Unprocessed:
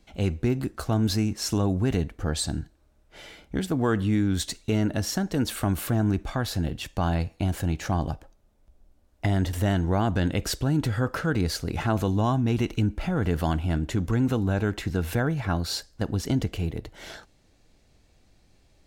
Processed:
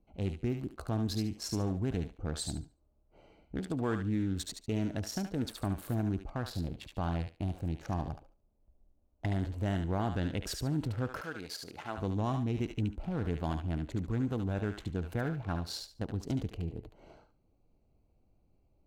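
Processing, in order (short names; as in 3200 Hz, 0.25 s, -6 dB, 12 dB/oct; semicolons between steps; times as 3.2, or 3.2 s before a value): Wiener smoothing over 25 samples; 11.21–11.98 HPF 760 Hz 6 dB/oct; thinning echo 72 ms, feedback 23%, high-pass 1100 Hz, level -4 dB; gain -8.5 dB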